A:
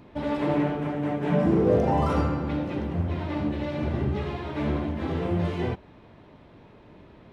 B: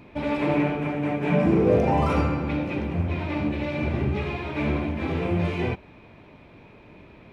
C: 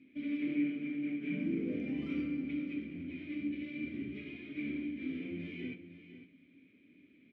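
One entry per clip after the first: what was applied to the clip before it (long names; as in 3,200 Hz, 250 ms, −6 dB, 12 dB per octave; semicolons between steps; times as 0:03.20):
parametric band 2,400 Hz +13 dB 0.22 octaves; level +1.5 dB
formant filter i; single-tap delay 504 ms −12.5 dB; convolution reverb RT60 1.3 s, pre-delay 3 ms, DRR 19 dB; level −3.5 dB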